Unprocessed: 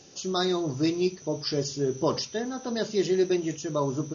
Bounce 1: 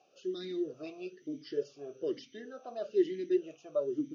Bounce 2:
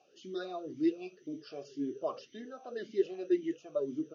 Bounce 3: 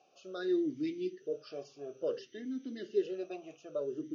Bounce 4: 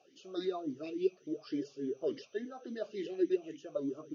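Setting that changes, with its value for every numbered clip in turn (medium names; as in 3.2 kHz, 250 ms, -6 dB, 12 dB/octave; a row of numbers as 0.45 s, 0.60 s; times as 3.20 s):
talking filter, rate: 1.1 Hz, 1.9 Hz, 0.58 Hz, 3.5 Hz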